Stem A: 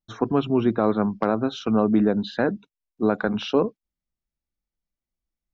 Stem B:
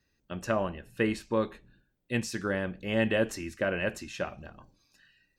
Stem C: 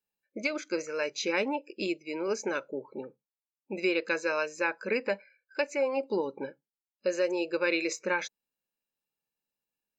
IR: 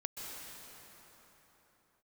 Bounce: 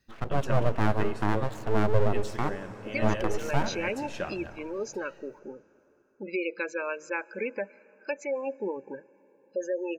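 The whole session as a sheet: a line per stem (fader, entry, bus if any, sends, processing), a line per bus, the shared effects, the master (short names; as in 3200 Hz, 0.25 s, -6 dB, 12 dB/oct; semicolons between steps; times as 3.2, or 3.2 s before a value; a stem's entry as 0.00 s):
-2.0 dB, 0.00 s, send -11.5 dB, Wiener smoothing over 9 samples; harmonic-percussive split percussive -8 dB; full-wave rectifier
+1.0 dB, 0.00 s, send -18 dB, auto duck -13 dB, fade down 0.95 s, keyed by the first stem
-3.0 dB, 2.50 s, send -22 dB, spectral gate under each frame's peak -20 dB strong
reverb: on, pre-delay 0.118 s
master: dry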